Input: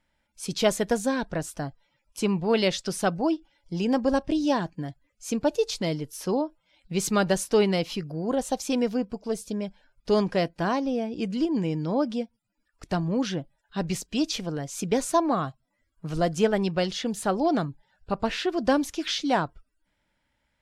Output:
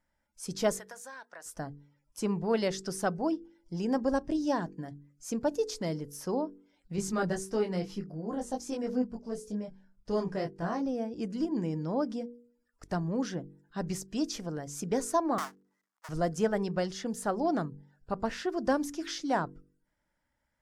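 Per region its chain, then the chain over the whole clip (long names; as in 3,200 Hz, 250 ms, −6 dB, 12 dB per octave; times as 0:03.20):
0:00.79–0:01.46: high-pass filter 1,100 Hz + parametric band 6,700 Hz −4 dB 2.5 octaves + downward compressor 3 to 1, threshold −37 dBFS
0:06.96–0:10.86: low-pass filter 11,000 Hz + low-shelf EQ 210 Hz +6.5 dB + micro pitch shift up and down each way 17 cents
0:15.38–0:16.09: each half-wave held at its own peak + high-pass filter 820 Hz 24 dB per octave + high-shelf EQ 10,000 Hz −10 dB
whole clip: flat-topped bell 3,100 Hz −8 dB 1.1 octaves; hum removal 47.94 Hz, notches 10; level −5 dB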